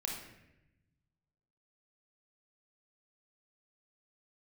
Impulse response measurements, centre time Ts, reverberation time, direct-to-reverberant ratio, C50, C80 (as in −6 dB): 47 ms, 0.90 s, −0.5 dB, 2.5 dB, 6.0 dB